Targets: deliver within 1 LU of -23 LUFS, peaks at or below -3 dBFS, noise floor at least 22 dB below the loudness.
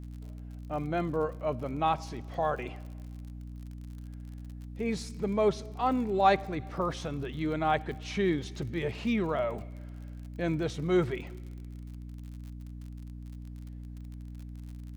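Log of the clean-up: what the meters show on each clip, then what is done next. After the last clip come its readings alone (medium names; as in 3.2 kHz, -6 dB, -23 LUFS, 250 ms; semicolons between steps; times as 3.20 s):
tick rate 50 per s; hum 60 Hz; highest harmonic 300 Hz; hum level -40 dBFS; loudness -31.0 LUFS; peak level -11.0 dBFS; loudness target -23.0 LUFS
-> de-click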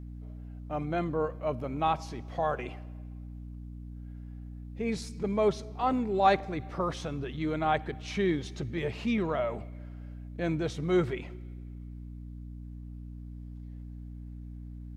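tick rate 0 per s; hum 60 Hz; highest harmonic 300 Hz; hum level -40 dBFS
-> de-hum 60 Hz, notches 5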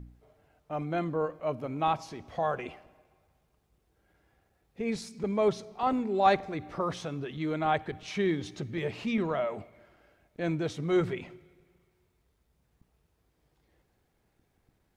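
hum not found; loudness -31.0 LUFS; peak level -11.5 dBFS; loudness target -23.0 LUFS
-> trim +8 dB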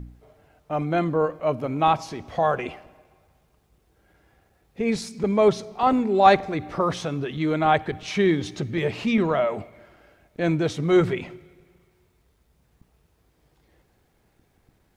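loudness -23.0 LUFS; peak level -3.5 dBFS; noise floor -66 dBFS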